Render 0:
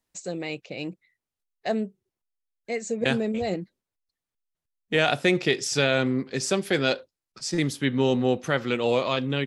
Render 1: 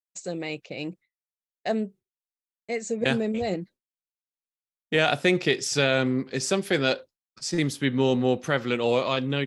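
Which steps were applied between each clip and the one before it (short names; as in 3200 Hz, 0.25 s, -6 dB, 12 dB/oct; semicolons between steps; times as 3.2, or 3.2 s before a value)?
expander -43 dBFS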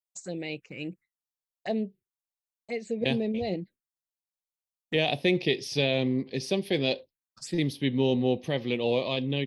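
envelope phaser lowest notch 300 Hz, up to 1400 Hz, full sweep at -27 dBFS; gain -1.5 dB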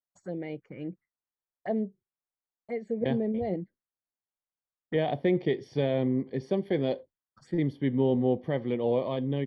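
polynomial smoothing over 41 samples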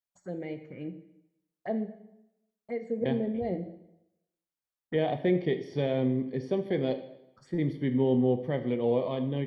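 plate-style reverb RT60 0.85 s, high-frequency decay 0.95×, DRR 8 dB; gain -1.5 dB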